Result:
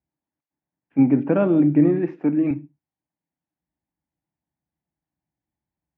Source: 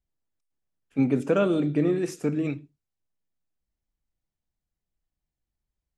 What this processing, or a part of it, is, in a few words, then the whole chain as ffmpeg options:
bass cabinet: -filter_complex "[0:a]highpass=frequency=76:width=0.5412,highpass=frequency=76:width=1.3066,equalizer=frequency=96:width_type=q:width=4:gain=-8,equalizer=frequency=160:width_type=q:width=4:gain=4,equalizer=frequency=300:width_type=q:width=4:gain=7,equalizer=frequency=440:width_type=q:width=4:gain=-7,equalizer=frequency=860:width_type=q:width=4:gain=6,equalizer=frequency=1300:width_type=q:width=4:gain=-7,lowpass=frequency=2100:width=0.5412,lowpass=frequency=2100:width=1.3066,asettb=1/sr,asplit=3[link_01][link_02][link_03];[link_01]atrim=end=2.084[link_04];[link_02]atrim=start=2.08:end=2.51,asetpts=PTS-STARTPTS,afade=type=in:duration=0.004:curve=qsin,afade=type=out:start_time=0.426:duration=0.004:curve=qsin,highpass=210[link_05];[link_03]atrim=start=2.506[link_06];[link_04][link_05]acrossfade=duration=0.004:curve1=hsin:curve2=qsin[link_07];[link_07][link_06]acrossfade=duration=0.004:curve1=qsin:curve2=hsin,volume=3.5dB"

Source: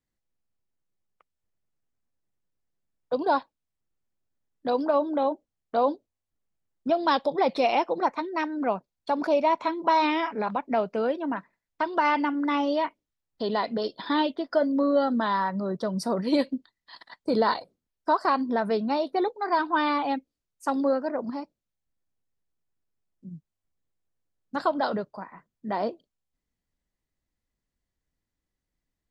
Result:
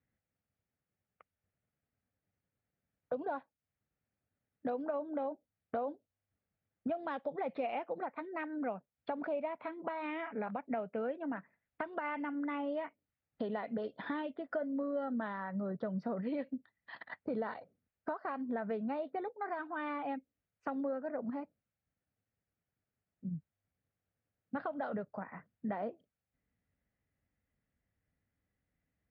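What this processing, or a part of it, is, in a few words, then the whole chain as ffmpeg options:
bass amplifier: -af "acompressor=threshold=-39dB:ratio=4,highpass=66,equalizer=frequency=97:width_type=q:width=4:gain=5,equalizer=frequency=350:width_type=q:width=4:gain=-7,equalizer=frequency=1000:width_type=q:width=4:gain=-9,lowpass=frequency=2400:width=0.5412,lowpass=frequency=2400:width=1.3066,volume=3.5dB"

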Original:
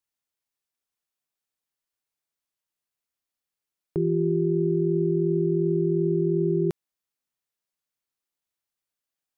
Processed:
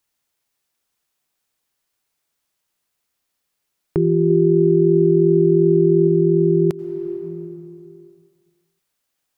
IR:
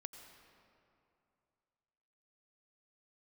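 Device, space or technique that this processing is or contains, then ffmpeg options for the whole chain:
ducked reverb: -filter_complex "[0:a]asettb=1/sr,asplit=3[link_01][link_02][link_03];[link_01]atrim=end=4.304[link_04];[link_02]atrim=start=4.3:end=6.08,asetpts=PTS-STARTPTS,afade=type=in:duration=0.004:curve=qsin,afade=type=out:start_time=1.776:duration=0.004:curve=qsin,equalizer=frequency=560:width_type=o:width=1.3:gain=4.5[link_05];[link_03]atrim=start=6.076[link_06];[link_04][link_05]acrossfade=duration=0.004:curve1=hsin:curve2=qsin[link_07];[link_07][link_06]acrossfade=duration=0.004:curve1=qsin:curve2=hsin,asplit=3[link_08][link_09][link_10];[1:a]atrim=start_sample=2205[link_11];[link_09][link_11]afir=irnorm=-1:irlink=0[link_12];[link_10]apad=whole_len=413630[link_13];[link_12][link_13]sidechaincompress=threshold=-35dB:ratio=4:attack=9.5:release=404,volume=8.5dB[link_14];[link_08][link_14]amix=inputs=2:normalize=0,volume=4.5dB"

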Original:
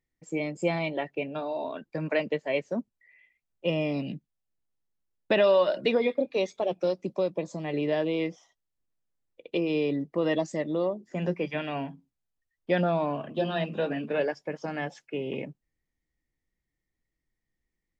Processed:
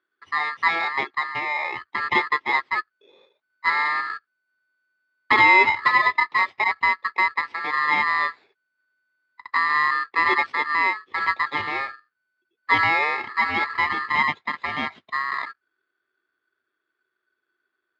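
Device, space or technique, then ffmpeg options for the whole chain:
ring modulator pedal into a guitar cabinet: -af "aeval=exprs='val(0)*sgn(sin(2*PI*1500*n/s))':channel_layout=same,highpass=92,equalizer=frequency=100:width_type=q:width=4:gain=5,equalizer=frequency=250:width_type=q:width=4:gain=5,equalizer=frequency=370:width_type=q:width=4:gain=8,equalizer=frequency=1100:width_type=q:width=4:gain=4,equalizer=frequency=2100:width_type=q:width=4:gain=4,lowpass=frequency=3500:width=0.5412,lowpass=frequency=3500:width=1.3066,volume=4dB"

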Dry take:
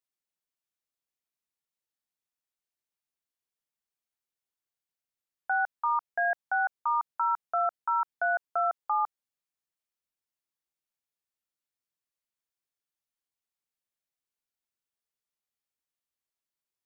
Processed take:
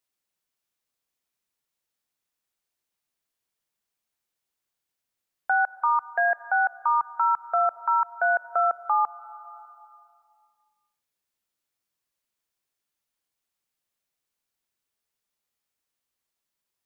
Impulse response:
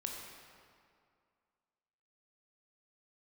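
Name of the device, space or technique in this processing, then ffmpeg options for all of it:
compressed reverb return: -filter_complex "[0:a]asplit=2[link_01][link_02];[1:a]atrim=start_sample=2205[link_03];[link_02][link_03]afir=irnorm=-1:irlink=0,acompressor=threshold=-37dB:ratio=10,volume=-5dB[link_04];[link_01][link_04]amix=inputs=2:normalize=0,asettb=1/sr,asplit=3[link_05][link_06][link_07];[link_05]atrim=end=6.104[link_08];[link_06]atrim=start=6.1:end=6.73,asetpts=PTS-STARTPTS,afade=type=in:duration=0.004:curve=qsin,afade=type=out:start_time=0.626:duration=0.004:curve=qsin,highpass=290[link_09];[link_07]atrim=start=6.726[link_10];[link_08][link_09]acrossfade=duration=0.004:curve1=hsin:curve2=qsin[link_11];[link_11][link_10]acrossfade=duration=0.004:curve1=qsin:curve2=hsin,volume=4dB"

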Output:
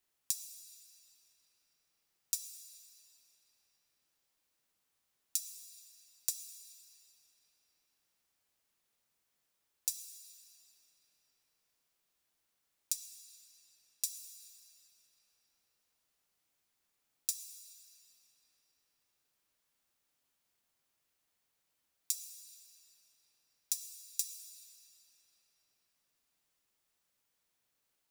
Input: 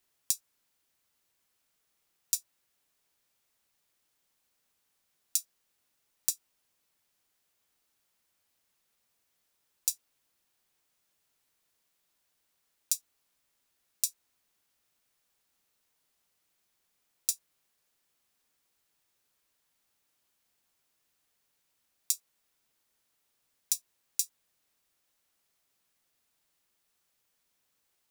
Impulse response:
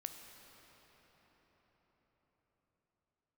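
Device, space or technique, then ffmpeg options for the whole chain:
cathedral: -filter_complex "[1:a]atrim=start_sample=2205[link_01];[0:a][link_01]afir=irnorm=-1:irlink=0,asettb=1/sr,asplit=3[link_02][link_03][link_04];[link_02]atrim=end=12.924[link_05];[link_03]atrim=start=12.92:end=14.04,asetpts=PTS-STARTPTS,afade=type=in:duration=0.004:curve=qsin,afade=type=out:start_time=1.116:duration=0.004:curve=qsin,highshelf=frequency=10000:gain=-5[link_06];[link_04]atrim=start=14.036[link_07];[link_05][link_06]acrossfade=duration=0.004:curve1=hsin:curve2=qsin[link_08];[link_08][link_07]acrossfade=duration=0.004:curve1=qsin:curve2=hsin,volume=-1dB"

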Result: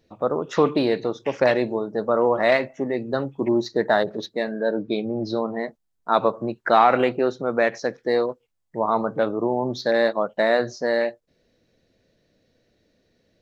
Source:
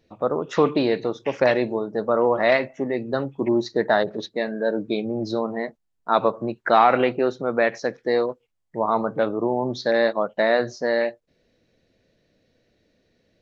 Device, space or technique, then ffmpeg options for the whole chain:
exciter from parts: -filter_complex "[0:a]asplit=2[link_01][link_02];[link_02]highpass=frequency=2200:width=0.5412,highpass=frequency=2200:width=1.3066,asoftclip=type=tanh:threshold=-32.5dB,volume=-11.5dB[link_03];[link_01][link_03]amix=inputs=2:normalize=0,asettb=1/sr,asplit=3[link_04][link_05][link_06];[link_04]atrim=end=4.564[link_07];[link_05]atrim=start=4.56:end=5.6,asetpts=PTS-STARTPTS,afade=type=in:duration=0.004:curve=qsin,afade=type=out:start_time=1.036:duration=0.004:curve=qsin,lowpass=frequency=5600:width=0.5412,lowpass=frequency=5600:width=1.3066[link_08];[link_06]atrim=start=5.596[link_09];[link_07][link_08]acrossfade=duration=0.004:curve1=hsin:curve2=qsin[link_10];[link_10][link_09]acrossfade=duration=0.004:curve1=qsin:curve2=hsin"

